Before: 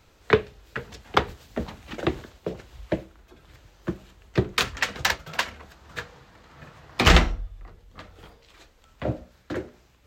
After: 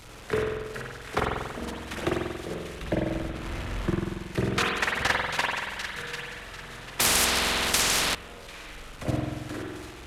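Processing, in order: delta modulation 64 kbps, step -31 dBFS; 2.81–3.91 tone controls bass +3 dB, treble -8 dB; level quantiser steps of 12 dB; thin delay 0.745 s, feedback 33%, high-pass 1800 Hz, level -6.5 dB; spring tank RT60 1.4 s, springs 46 ms, chirp 55 ms, DRR -2.5 dB; 7–8.15 spectral compressor 10:1

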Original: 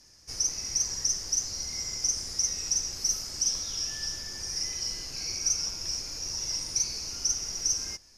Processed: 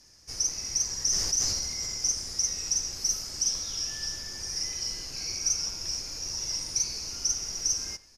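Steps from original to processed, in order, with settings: speakerphone echo 90 ms, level -18 dB; 0.99–2.12 sustainer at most 28 dB/s

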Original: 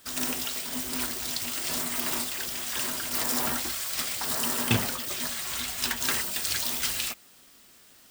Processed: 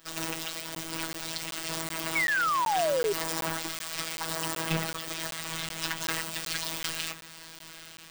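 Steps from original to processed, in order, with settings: bell 15000 Hz -9.5 dB 1.7 oct; diffused feedback echo 0.93 s, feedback 42%, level -14.5 dB; in parallel at -9 dB: sine folder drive 11 dB, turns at -10 dBFS; on the sum: robotiser 162 Hz; painted sound fall, 2.15–3.13, 390–2300 Hz -20 dBFS; crackling interface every 0.38 s, samples 512, zero, from 0.75; gain -6.5 dB

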